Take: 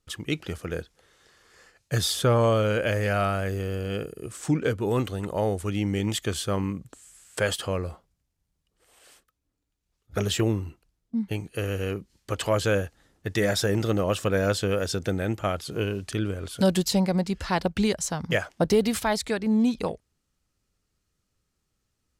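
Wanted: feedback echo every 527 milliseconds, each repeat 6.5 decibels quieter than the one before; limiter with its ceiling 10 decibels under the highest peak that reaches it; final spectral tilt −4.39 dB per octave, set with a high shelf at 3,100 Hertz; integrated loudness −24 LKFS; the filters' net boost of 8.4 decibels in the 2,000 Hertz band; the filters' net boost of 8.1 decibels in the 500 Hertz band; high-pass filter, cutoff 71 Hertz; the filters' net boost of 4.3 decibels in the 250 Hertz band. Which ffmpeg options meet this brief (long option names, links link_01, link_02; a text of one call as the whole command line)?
ffmpeg -i in.wav -af "highpass=71,equalizer=frequency=250:width_type=o:gain=3.5,equalizer=frequency=500:width_type=o:gain=8,equalizer=frequency=2000:width_type=o:gain=8.5,highshelf=frequency=3100:gain=5.5,alimiter=limit=-13dB:level=0:latency=1,aecho=1:1:527|1054|1581|2108|2635|3162:0.473|0.222|0.105|0.0491|0.0231|0.0109,volume=-0.5dB" out.wav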